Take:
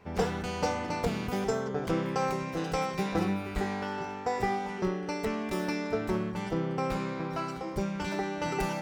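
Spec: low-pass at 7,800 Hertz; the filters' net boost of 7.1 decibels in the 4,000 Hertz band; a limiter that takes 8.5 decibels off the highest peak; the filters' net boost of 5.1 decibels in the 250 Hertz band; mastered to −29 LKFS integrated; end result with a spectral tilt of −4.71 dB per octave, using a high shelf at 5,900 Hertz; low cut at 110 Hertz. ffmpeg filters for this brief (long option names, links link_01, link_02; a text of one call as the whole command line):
ffmpeg -i in.wav -af "highpass=110,lowpass=7800,equalizer=frequency=250:width_type=o:gain=7.5,equalizer=frequency=4000:width_type=o:gain=7,highshelf=frequency=5900:gain=6.5,volume=1.5dB,alimiter=limit=-19.5dB:level=0:latency=1" out.wav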